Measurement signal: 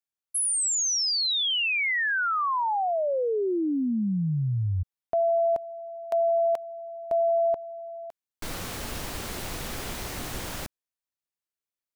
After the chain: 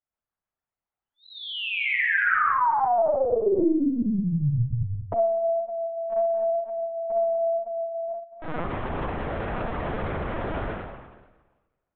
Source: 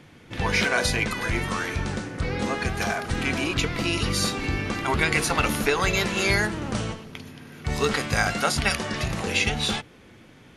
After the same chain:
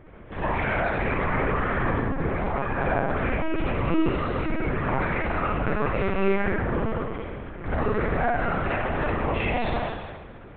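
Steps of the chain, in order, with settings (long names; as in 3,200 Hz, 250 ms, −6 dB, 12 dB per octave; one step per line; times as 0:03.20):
low-pass filter 1,300 Hz 12 dB per octave
low-shelf EQ 120 Hz −11.5 dB
mains-hum notches 50/100/150/200/250/300/350/400/450 Hz
downward compressor 12 to 1, threshold −31 dBFS
on a send: flutter between parallel walls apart 7.1 metres, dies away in 0.28 s
on the sum: spring reverb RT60 1.3 s, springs 44/59 ms, chirp 45 ms, DRR −4.5 dB
linear-prediction vocoder at 8 kHz pitch kept
level +4.5 dB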